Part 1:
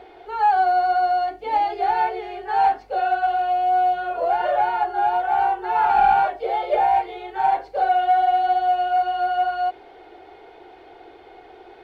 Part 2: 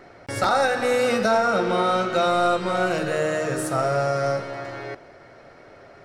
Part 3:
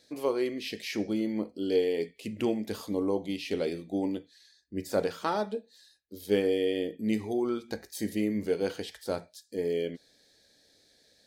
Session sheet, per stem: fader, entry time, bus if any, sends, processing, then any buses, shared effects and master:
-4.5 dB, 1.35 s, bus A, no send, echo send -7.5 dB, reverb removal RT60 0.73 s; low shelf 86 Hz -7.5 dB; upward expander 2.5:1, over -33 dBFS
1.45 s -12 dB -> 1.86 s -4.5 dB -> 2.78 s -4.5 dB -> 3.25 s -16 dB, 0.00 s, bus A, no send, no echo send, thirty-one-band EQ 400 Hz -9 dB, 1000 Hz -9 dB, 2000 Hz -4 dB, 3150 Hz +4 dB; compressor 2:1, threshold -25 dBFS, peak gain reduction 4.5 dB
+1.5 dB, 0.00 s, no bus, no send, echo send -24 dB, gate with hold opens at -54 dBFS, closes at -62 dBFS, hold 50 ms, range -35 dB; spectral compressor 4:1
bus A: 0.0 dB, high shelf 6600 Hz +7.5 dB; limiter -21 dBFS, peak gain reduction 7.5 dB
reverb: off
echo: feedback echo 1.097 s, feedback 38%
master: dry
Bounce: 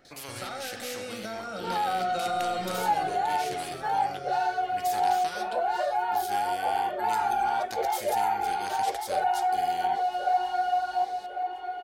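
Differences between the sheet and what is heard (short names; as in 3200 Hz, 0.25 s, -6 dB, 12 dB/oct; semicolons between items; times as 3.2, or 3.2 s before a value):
stem 1: missing upward expander 2.5:1, over -33 dBFS; stem 3 +1.5 dB -> -7.5 dB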